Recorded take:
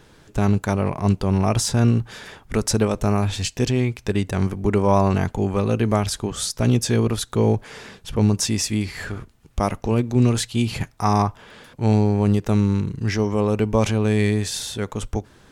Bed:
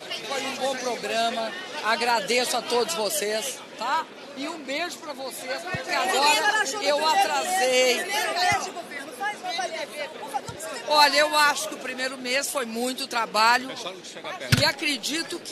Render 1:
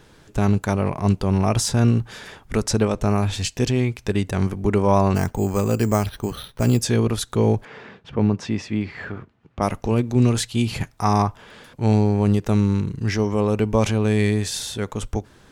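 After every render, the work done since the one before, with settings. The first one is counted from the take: 2.63–3.1 high shelf 11000 Hz -10 dB; 5.15–6.81 careless resampling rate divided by 6×, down filtered, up hold; 7.65–9.62 BPF 110–2400 Hz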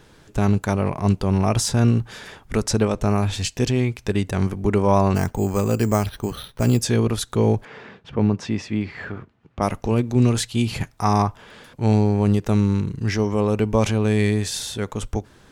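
nothing audible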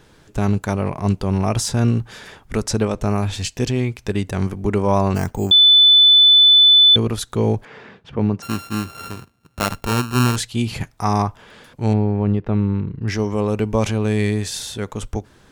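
5.51–6.96 bleep 3500 Hz -7 dBFS; 8.42–10.36 sample sorter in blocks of 32 samples; 11.93–13.08 air absorption 410 m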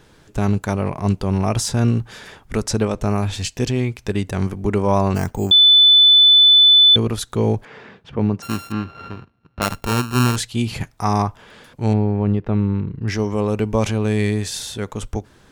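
8.72–9.62 air absorption 270 m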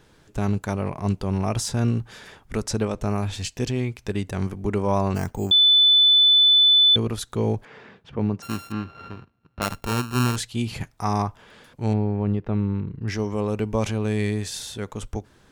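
gain -5 dB

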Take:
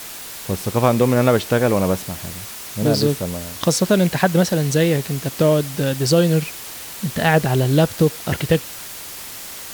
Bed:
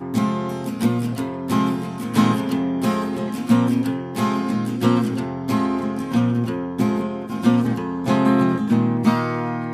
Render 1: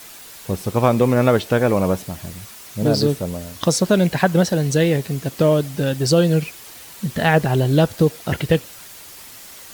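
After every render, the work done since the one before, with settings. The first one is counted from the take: denoiser 7 dB, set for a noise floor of -34 dBFS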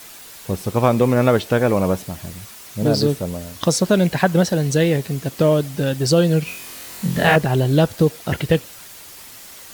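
6.44–7.36 flutter echo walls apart 3.9 m, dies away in 0.6 s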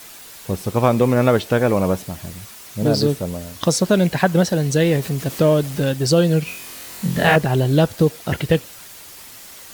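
4.85–5.92 zero-crossing step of -31.5 dBFS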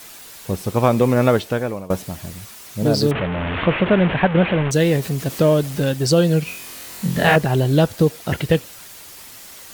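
1.31–1.9 fade out, to -21.5 dB; 3.11–4.71 delta modulation 16 kbps, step -17 dBFS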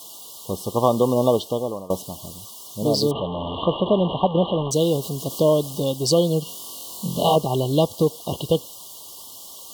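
FFT band-reject 1200–2800 Hz; low shelf 200 Hz -10.5 dB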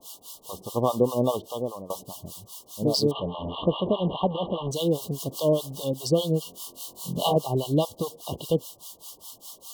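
harmonic tremolo 4.9 Hz, depth 100%, crossover 680 Hz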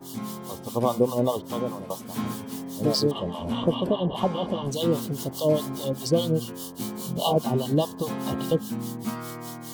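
add bed -14 dB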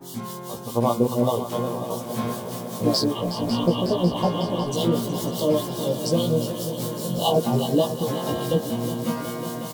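doubler 17 ms -2 dB; multi-head echo 0.183 s, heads second and third, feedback 74%, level -12 dB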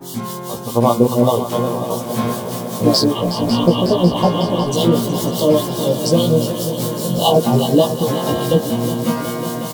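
gain +7.5 dB; limiter -1 dBFS, peak gain reduction 1.5 dB

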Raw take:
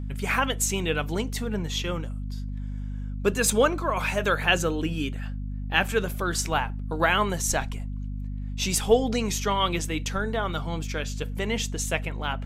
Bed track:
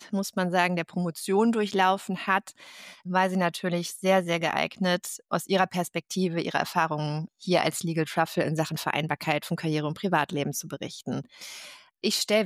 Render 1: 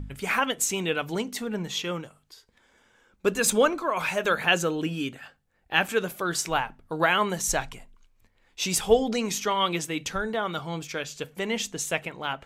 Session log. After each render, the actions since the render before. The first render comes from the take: de-hum 50 Hz, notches 5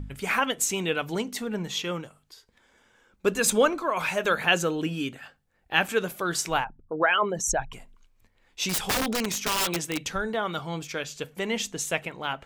6.64–7.73 formant sharpening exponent 2; 8.69–9.98 wrapped overs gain 20 dB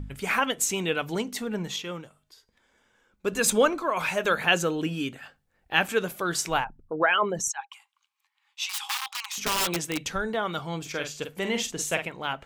1.76–3.33 resonator 210 Hz, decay 0.75 s, harmonics odd, mix 40%; 7.48–9.38 rippled Chebyshev high-pass 790 Hz, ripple 6 dB; 10.81–12.06 doubler 47 ms -7 dB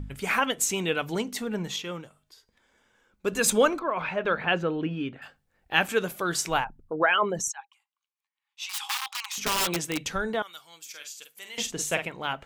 3.79–5.22 air absorption 350 m; 7.41–8.79 dip -16 dB, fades 0.29 s; 10.42–11.58 differentiator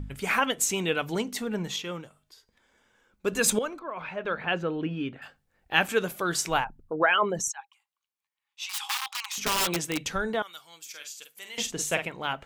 3.59–5.1 fade in, from -12 dB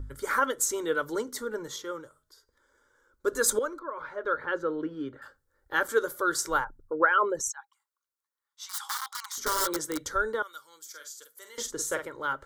fixed phaser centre 700 Hz, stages 6; small resonant body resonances 590/1400 Hz, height 7 dB, ringing for 25 ms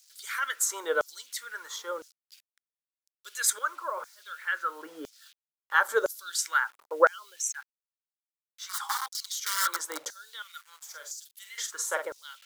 bit-crush 9-bit; LFO high-pass saw down 0.99 Hz 510–6100 Hz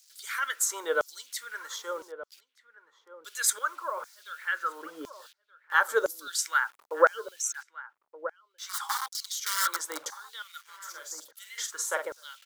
outdoor echo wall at 210 m, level -13 dB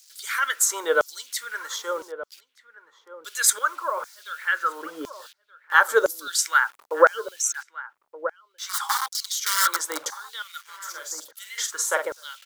gain +6.5 dB; limiter -2 dBFS, peak gain reduction 2.5 dB

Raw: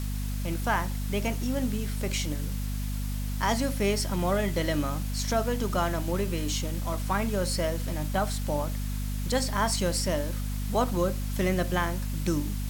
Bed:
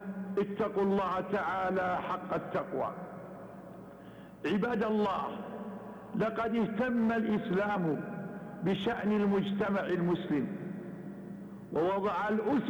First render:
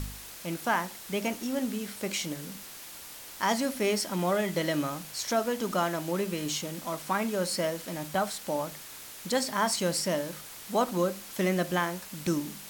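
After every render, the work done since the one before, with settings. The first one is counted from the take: de-hum 50 Hz, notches 5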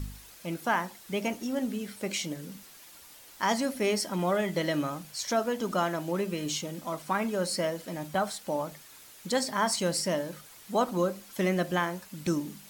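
denoiser 8 dB, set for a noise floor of -45 dBFS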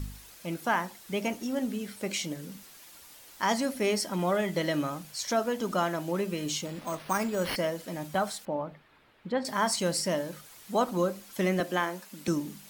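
6.65–7.56 careless resampling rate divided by 6×, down none, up hold; 8.45–9.45 air absorption 460 m; 11.6–12.28 steep high-pass 190 Hz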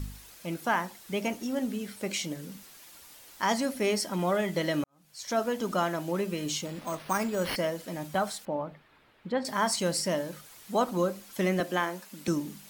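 4.84–5.39 fade in quadratic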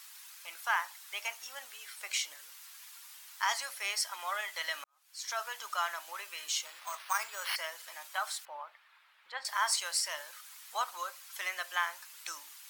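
HPF 1000 Hz 24 dB/oct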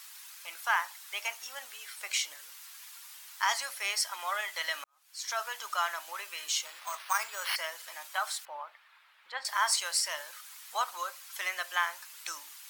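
gain +2.5 dB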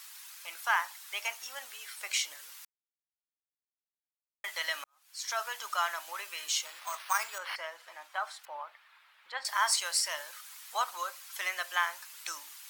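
2.65–4.44 mute; 7.38–8.44 LPF 1500 Hz 6 dB/oct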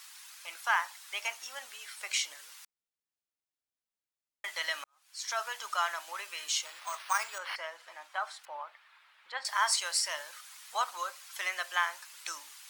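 bell 14000 Hz -11 dB 0.35 oct

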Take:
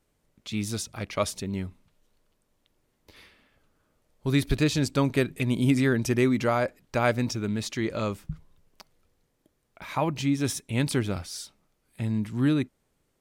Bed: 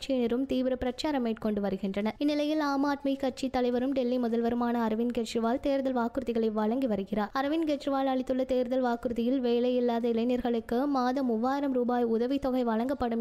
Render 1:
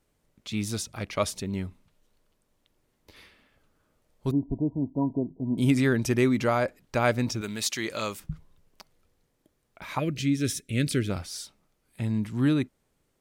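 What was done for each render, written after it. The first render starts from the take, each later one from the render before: 4.31–5.58 rippled Chebyshev low-pass 1000 Hz, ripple 9 dB; 7.41–8.2 tilt +3 dB/oct; 9.99–11.1 Butterworth band-stop 890 Hz, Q 1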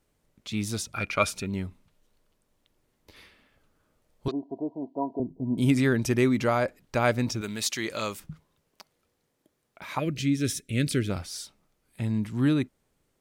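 0.94–1.48 small resonant body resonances 1400/2400 Hz, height 17 dB, ringing for 30 ms; 4.28–5.2 speaker cabinet 390–6400 Hz, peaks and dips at 390 Hz +4 dB, 690 Hz +8 dB, 1100 Hz +4 dB, 1700 Hz +7 dB, 3000 Hz +8 dB, 4300 Hz +9 dB; 8.28–10.05 HPF 250 Hz -> 120 Hz 6 dB/oct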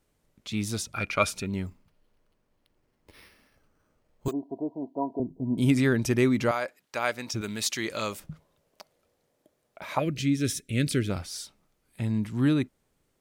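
1.66–4.33 careless resampling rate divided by 6×, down filtered, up hold; 6.51–7.34 HPF 990 Hz 6 dB/oct; 8.12–10.02 bell 600 Hz +8.5 dB 0.69 oct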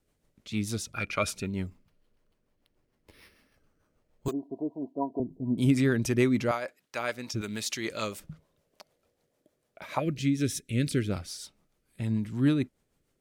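rotary speaker horn 6.7 Hz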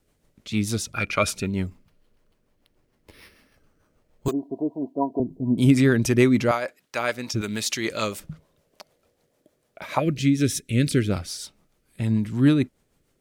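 gain +6.5 dB

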